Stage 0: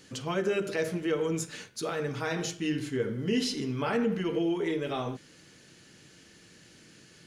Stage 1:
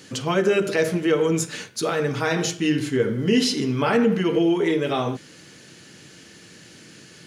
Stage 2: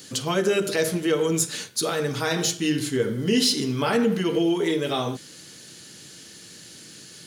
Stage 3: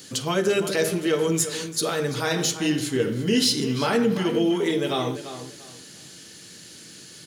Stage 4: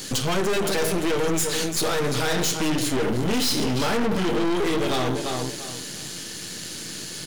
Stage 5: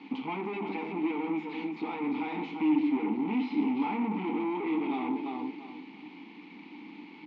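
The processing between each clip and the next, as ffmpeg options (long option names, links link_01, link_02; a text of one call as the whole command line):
ffmpeg -i in.wav -af "highpass=83,volume=9dB" out.wav
ffmpeg -i in.wav -af "aexciter=amount=1.6:drive=8.4:freq=3400,volume=-2.5dB" out.wav
ffmpeg -i in.wav -filter_complex "[0:a]asplit=2[link_01][link_02];[link_02]adelay=342,lowpass=frequency=4000:poles=1,volume=-11dB,asplit=2[link_03][link_04];[link_04]adelay=342,lowpass=frequency=4000:poles=1,volume=0.26,asplit=2[link_05][link_06];[link_06]adelay=342,lowpass=frequency=4000:poles=1,volume=0.26[link_07];[link_01][link_03][link_05][link_07]amix=inputs=4:normalize=0" out.wav
ffmpeg -i in.wav -filter_complex "[0:a]asplit=2[link_01][link_02];[link_02]acompressor=threshold=-31dB:ratio=6,volume=3dB[link_03];[link_01][link_03]amix=inputs=2:normalize=0,aeval=exprs='(tanh(25.1*val(0)+0.8)-tanh(0.8))/25.1':channel_layout=same,volume=6.5dB" out.wav
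ffmpeg -i in.wav -filter_complex "[0:a]acrusher=bits=5:mix=0:aa=0.000001,asplit=3[link_01][link_02][link_03];[link_01]bandpass=frequency=300:width_type=q:width=8,volume=0dB[link_04];[link_02]bandpass=frequency=870:width_type=q:width=8,volume=-6dB[link_05];[link_03]bandpass=frequency=2240:width_type=q:width=8,volume=-9dB[link_06];[link_04][link_05][link_06]amix=inputs=3:normalize=0,highpass=frequency=190:width=0.5412,highpass=frequency=190:width=1.3066,equalizer=frequency=210:width_type=q:width=4:gain=5,equalizer=frequency=340:width_type=q:width=4:gain=-7,equalizer=frequency=3000:width_type=q:width=4:gain=-3,lowpass=frequency=3200:width=0.5412,lowpass=frequency=3200:width=1.3066,volume=6dB" out.wav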